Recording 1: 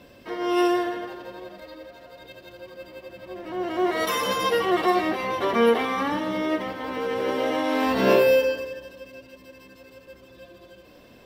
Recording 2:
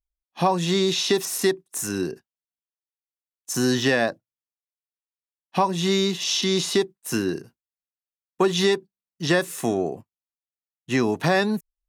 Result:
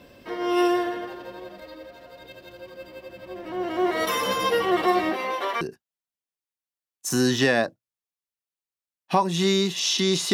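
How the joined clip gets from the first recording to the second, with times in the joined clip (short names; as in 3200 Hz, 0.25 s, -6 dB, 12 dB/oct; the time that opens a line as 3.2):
recording 1
5.09–5.61 HPF 170 Hz -> 1000 Hz
5.61 switch to recording 2 from 2.05 s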